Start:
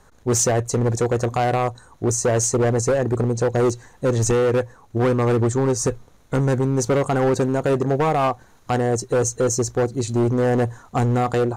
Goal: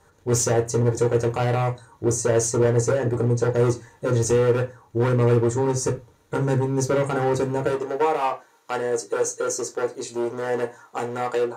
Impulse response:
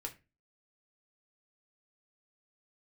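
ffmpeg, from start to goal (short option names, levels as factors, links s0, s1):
-filter_complex "[0:a]asetnsamples=n=441:p=0,asendcmd='7.67 highpass f 420',highpass=52[s0];[1:a]atrim=start_sample=2205,afade=t=out:st=0.17:d=0.01,atrim=end_sample=7938[s1];[s0][s1]afir=irnorm=-1:irlink=0"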